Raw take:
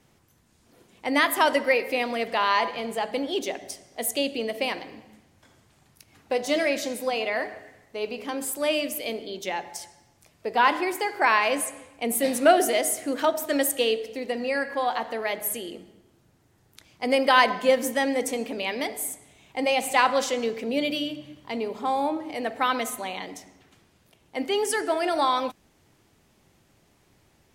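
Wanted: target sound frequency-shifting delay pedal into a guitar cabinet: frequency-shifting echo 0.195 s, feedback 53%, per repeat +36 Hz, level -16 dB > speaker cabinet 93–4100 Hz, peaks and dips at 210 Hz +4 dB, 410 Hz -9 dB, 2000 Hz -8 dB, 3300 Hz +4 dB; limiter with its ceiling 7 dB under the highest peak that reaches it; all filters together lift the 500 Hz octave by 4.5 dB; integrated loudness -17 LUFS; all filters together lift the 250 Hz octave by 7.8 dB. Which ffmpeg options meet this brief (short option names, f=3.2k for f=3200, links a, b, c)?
-filter_complex "[0:a]equalizer=f=250:t=o:g=7,equalizer=f=500:t=o:g=6.5,alimiter=limit=-9dB:level=0:latency=1,asplit=6[a][b][c][d][e][f];[b]adelay=195,afreqshift=36,volume=-16dB[g];[c]adelay=390,afreqshift=72,volume=-21.5dB[h];[d]adelay=585,afreqshift=108,volume=-27dB[i];[e]adelay=780,afreqshift=144,volume=-32.5dB[j];[f]adelay=975,afreqshift=180,volume=-38.1dB[k];[a][g][h][i][j][k]amix=inputs=6:normalize=0,highpass=93,equalizer=f=210:t=q:w=4:g=4,equalizer=f=410:t=q:w=4:g=-9,equalizer=f=2k:t=q:w=4:g=-8,equalizer=f=3.3k:t=q:w=4:g=4,lowpass=f=4.1k:w=0.5412,lowpass=f=4.1k:w=1.3066,volume=6.5dB"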